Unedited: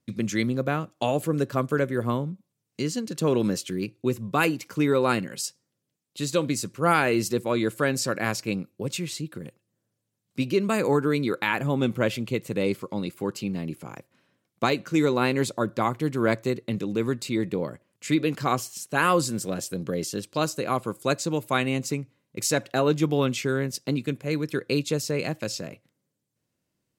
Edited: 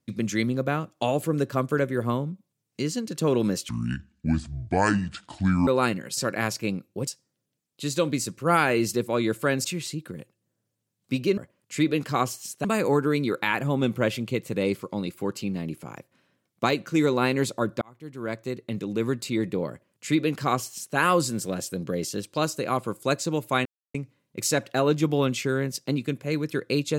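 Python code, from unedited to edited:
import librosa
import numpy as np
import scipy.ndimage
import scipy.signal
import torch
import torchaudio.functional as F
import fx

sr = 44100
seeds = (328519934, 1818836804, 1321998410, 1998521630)

y = fx.edit(x, sr, fx.speed_span(start_s=3.69, length_s=1.25, speed=0.63),
    fx.move(start_s=8.01, length_s=0.9, to_s=5.44),
    fx.fade_in_span(start_s=15.81, length_s=1.26),
    fx.duplicate(start_s=17.69, length_s=1.27, to_s=10.64),
    fx.silence(start_s=21.65, length_s=0.29), tone=tone)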